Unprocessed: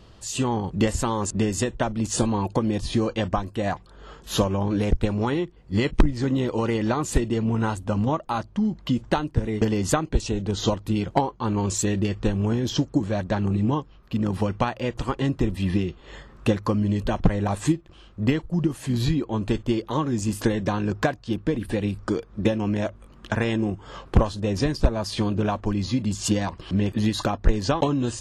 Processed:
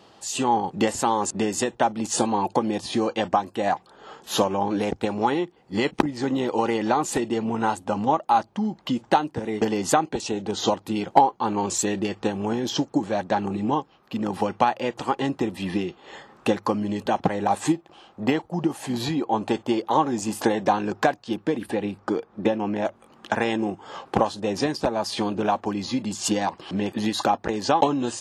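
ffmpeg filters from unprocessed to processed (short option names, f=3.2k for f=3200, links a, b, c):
-filter_complex "[0:a]asettb=1/sr,asplit=3[a][b][c];[a]atrim=end=17.664[d];[b]atrim=start=17.66:end=20.73,asetpts=PTS-STARTPTS,afade=t=in:d=0.004:c=qsin,afade=t=out:st=3.066:d=0.004:c=qsin,equalizer=f=760:w=1.5:g=5[e];[c]atrim=start=20.726[f];[d][e]acrossfade=d=0.004:c1=hsin:c2=qsin[g];[g][f]acrossfade=d=0.004:c1=qsin:c2=hsin,asettb=1/sr,asplit=3[h][i][j];[h]atrim=end=21.714[k];[i]atrim=start=21.71:end=22.85,asetpts=PTS-STARTPTS,afade=t=in:d=0.004:c=qsin,afade=t=out:st=1.136:d=0.004:c=qsin,highshelf=f=4.2k:g=-11[l];[j]atrim=start=22.846[m];[k][l]acrossfade=d=0.004:c1=hsin:c2=qsin[n];[n][m]acrossfade=d=0.004:c1=qsin:c2=hsin,highpass=240,equalizer=f=810:t=o:w=0.26:g=10,volume=1.5dB"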